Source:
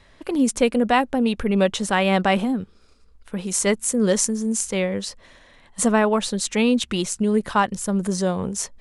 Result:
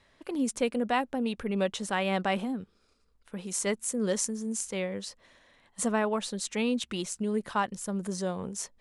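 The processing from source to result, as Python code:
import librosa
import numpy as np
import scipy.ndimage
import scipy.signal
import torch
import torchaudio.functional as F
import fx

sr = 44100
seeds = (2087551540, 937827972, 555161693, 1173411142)

y = fx.low_shelf(x, sr, hz=80.0, db=-9.5)
y = F.gain(torch.from_numpy(y), -9.0).numpy()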